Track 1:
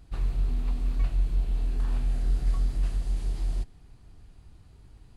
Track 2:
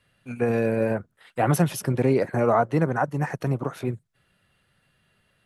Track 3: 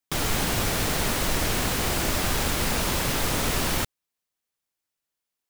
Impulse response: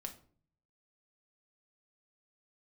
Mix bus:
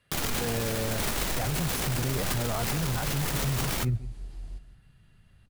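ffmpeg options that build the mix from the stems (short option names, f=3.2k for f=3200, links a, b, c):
-filter_complex "[0:a]adelay=950,volume=-11.5dB,asplit=2[a][b];[b]volume=-12dB[c];[1:a]asubboost=boost=10:cutoff=130,alimiter=limit=-14dB:level=0:latency=1,volume=-2.5dB,asplit=2[d][e];[e]volume=-20dB[f];[2:a]acrusher=bits=5:dc=4:mix=0:aa=0.000001,volume=-4dB,asplit=2[g][h];[h]volume=-8.5dB[i];[3:a]atrim=start_sample=2205[j];[i][j]afir=irnorm=-1:irlink=0[k];[c][f]amix=inputs=2:normalize=0,aecho=0:1:165:1[l];[a][d][g][k][l]amix=inputs=5:normalize=0,alimiter=limit=-20.5dB:level=0:latency=1:release=18"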